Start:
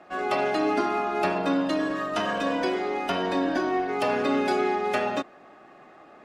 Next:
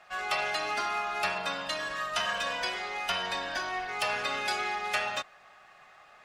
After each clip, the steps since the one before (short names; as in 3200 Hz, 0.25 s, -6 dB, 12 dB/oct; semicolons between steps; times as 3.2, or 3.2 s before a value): passive tone stack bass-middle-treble 10-0-10; gain +5.5 dB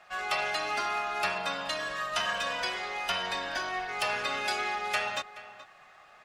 outdoor echo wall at 73 m, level -15 dB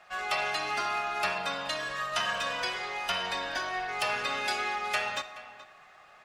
reverb RT60 1.4 s, pre-delay 46 ms, DRR 13.5 dB